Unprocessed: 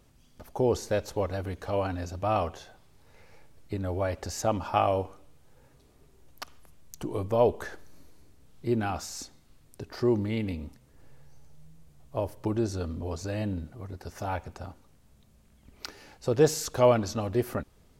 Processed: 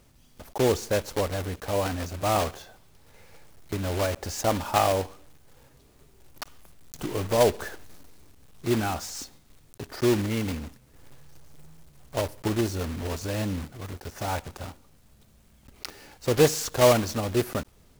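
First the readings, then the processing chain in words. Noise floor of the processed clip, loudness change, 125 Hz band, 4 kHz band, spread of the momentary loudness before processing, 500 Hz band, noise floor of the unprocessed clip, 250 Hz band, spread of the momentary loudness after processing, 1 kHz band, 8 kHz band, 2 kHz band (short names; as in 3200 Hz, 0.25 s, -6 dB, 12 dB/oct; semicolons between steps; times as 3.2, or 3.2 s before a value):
-58 dBFS, +2.5 dB, +2.0 dB, +8.0 dB, 19 LU, +2.0 dB, -60 dBFS, +2.0 dB, 19 LU, +2.5 dB, +6.0 dB, +6.0 dB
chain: block floating point 3-bit; gain +2 dB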